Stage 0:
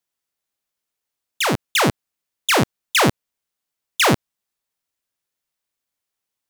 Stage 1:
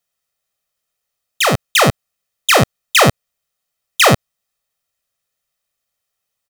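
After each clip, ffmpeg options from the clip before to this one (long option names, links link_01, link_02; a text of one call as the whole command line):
ffmpeg -i in.wav -af "aecho=1:1:1.6:0.55,volume=4.5dB" out.wav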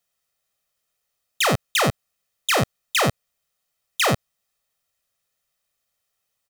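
ffmpeg -i in.wav -af "alimiter=limit=-12.5dB:level=0:latency=1:release=11" out.wav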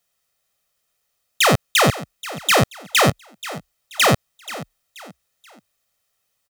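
ffmpeg -i in.wav -filter_complex "[0:a]asplit=4[link_01][link_02][link_03][link_04];[link_02]adelay=481,afreqshift=31,volume=-16dB[link_05];[link_03]adelay=962,afreqshift=62,volume=-24.6dB[link_06];[link_04]adelay=1443,afreqshift=93,volume=-33.3dB[link_07];[link_01][link_05][link_06][link_07]amix=inputs=4:normalize=0,volume=4.5dB" out.wav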